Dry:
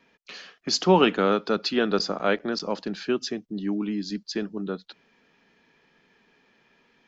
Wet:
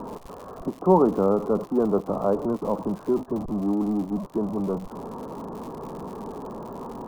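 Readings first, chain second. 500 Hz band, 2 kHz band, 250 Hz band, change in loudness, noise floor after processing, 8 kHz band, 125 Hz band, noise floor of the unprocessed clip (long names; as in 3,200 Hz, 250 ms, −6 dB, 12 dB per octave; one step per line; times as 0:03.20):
+2.0 dB, below −15 dB, +2.5 dB, 0.0 dB, −45 dBFS, can't be measured, +3.0 dB, −65 dBFS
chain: converter with a step at zero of −25 dBFS
elliptic low-pass filter 1,100 Hz, stop band 50 dB
surface crackle 130 per second −36 dBFS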